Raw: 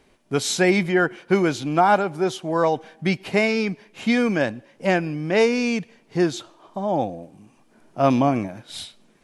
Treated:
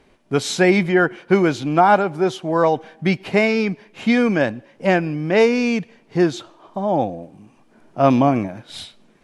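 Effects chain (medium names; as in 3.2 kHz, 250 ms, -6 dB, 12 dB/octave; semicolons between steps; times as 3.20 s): treble shelf 5.3 kHz -8.5 dB; trim +3.5 dB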